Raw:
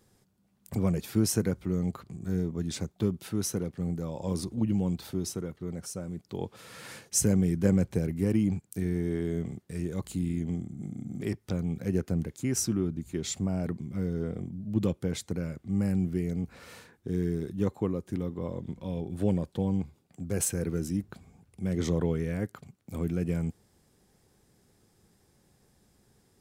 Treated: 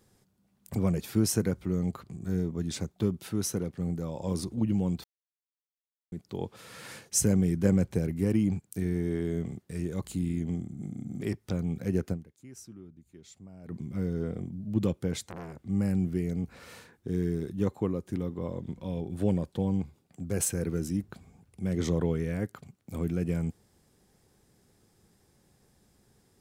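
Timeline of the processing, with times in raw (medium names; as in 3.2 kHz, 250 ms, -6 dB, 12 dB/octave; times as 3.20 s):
5.04–6.12 s: mute
12.12–13.74 s: dip -19 dB, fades 0.39 s exponential
15.25–15.66 s: transformer saturation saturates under 1.5 kHz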